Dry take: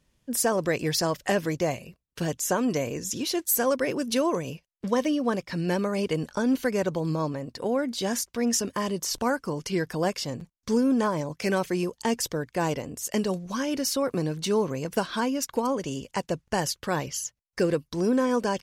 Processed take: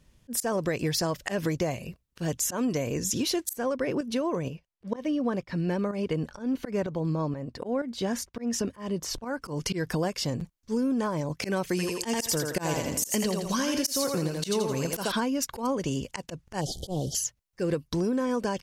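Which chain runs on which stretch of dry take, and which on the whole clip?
3.53–9.42 high shelf 4200 Hz -10.5 dB + tremolo saw up 2.1 Hz, depth 65%
11.69–15.12 high shelf 3000 Hz +9 dB + thinning echo 83 ms, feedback 39%, high-pass 310 Hz, level -3.5 dB
16.61–17.15 delta modulation 64 kbps, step -42 dBFS + brick-wall FIR band-stop 810–3000 Hz + Doppler distortion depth 0.11 ms
whole clip: low shelf 160 Hz +6 dB; auto swell 0.165 s; compressor, threshold -29 dBFS; gain +4.5 dB

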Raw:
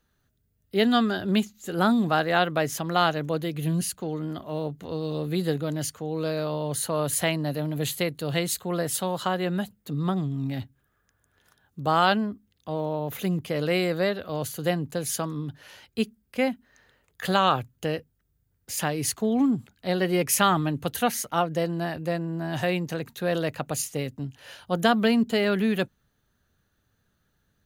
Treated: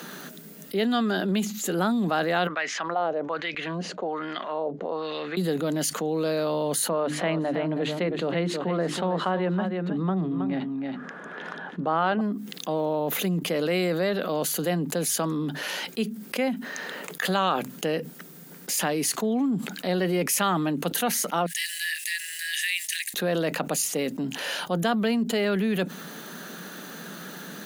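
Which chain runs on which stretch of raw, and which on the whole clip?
2.47–5.37 LPF 6600 Hz 24 dB/oct + wah 1.2 Hz 510–2200 Hz, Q 2.2
6.89–12.21 LPF 2100 Hz + notches 50/100/150/200/250/300/350 Hz + echo 0.32 s -11.5 dB
21.46–23.14 block floating point 7-bit + Chebyshev high-pass 1700 Hz, order 8 + bell 9500 Hz +11.5 dB 0.64 oct
whole clip: elliptic high-pass 170 Hz; fast leveller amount 70%; gain -4.5 dB

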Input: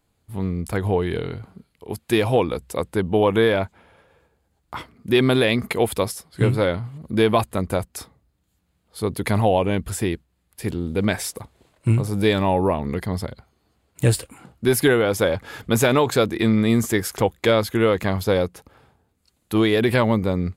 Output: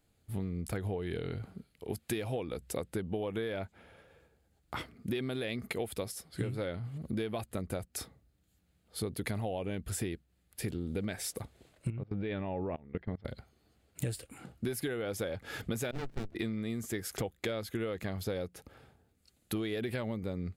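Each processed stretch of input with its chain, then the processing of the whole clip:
11.9–13.25 LPF 2900 Hz 24 dB/oct + level quantiser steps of 24 dB
15.91–16.35 gate -19 dBFS, range -18 dB + bell 96 Hz +8.5 dB 1.6 oct + running maximum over 65 samples
whole clip: bell 1000 Hz -8.5 dB 0.43 oct; compressor 12:1, threshold -29 dBFS; gain -3 dB

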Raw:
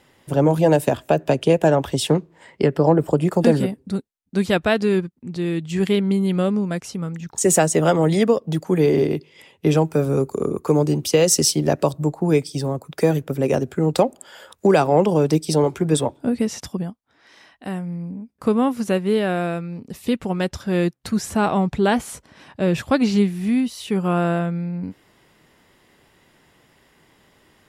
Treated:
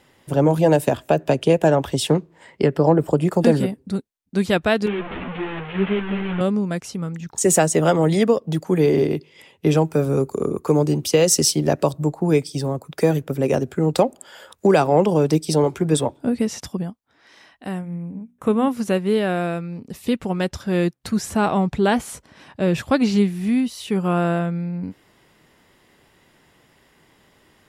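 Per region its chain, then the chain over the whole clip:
4.86–6.41 delta modulation 16 kbps, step -19 dBFS + bell 72 Hz -5 dB 2.7 oct + ensemble effect
17.81–18.68 Butterworth band-stop 4700 Hz, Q 3.2 + notches 60/120/180/240/300 Hz
whole clip: dry

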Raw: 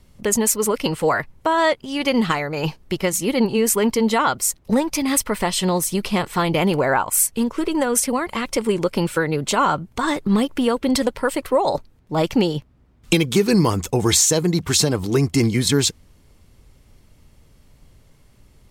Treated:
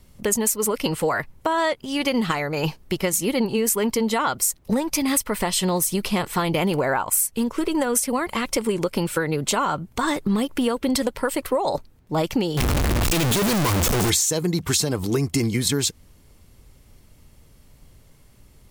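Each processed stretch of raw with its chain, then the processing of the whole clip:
12.57–14.1 infinite clipping + high shelf 11000 Hz -6.5 dB
whole clip: high shelf 10000 Hz +8.5 dB; compressor, threshold -18 dBFS

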